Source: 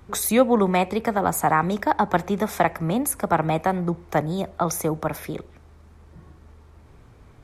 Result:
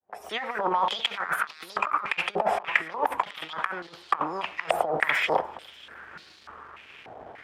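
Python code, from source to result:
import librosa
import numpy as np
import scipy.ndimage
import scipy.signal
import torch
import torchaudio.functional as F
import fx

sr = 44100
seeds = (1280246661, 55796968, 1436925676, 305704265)

y = fx.fade_in_head(x, sr, length_s=1.28)
y = fx.formant_shift(y, sr, semitones=6)
y = fx.over_compress(y, sr, threshold_db=-29.0, ratio=-0.5)
y = fx.leveller(y, sr, passes=2)
y = fx.echo_feedback(y, sr, ms=295, feedback_pct=48, wet_db=-20.5)
y = fx.filter_held_bandpass(y, sr, hz=3.4, low_hz=720.0, high_hz=4200.0)
y = y * 10.0 ** (8.5 / 20.0)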